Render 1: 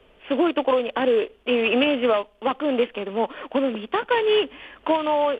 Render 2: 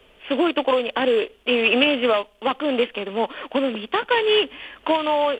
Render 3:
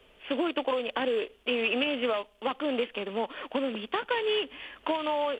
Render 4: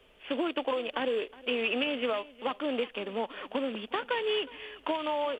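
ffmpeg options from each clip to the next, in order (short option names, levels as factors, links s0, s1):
-af "highshelf=f=2600:g=10"
-af "acompressor=threshold=0.1:ratio=3,volume=0.531"
-af "aecho=1:1:364:0.1,volume=0.794"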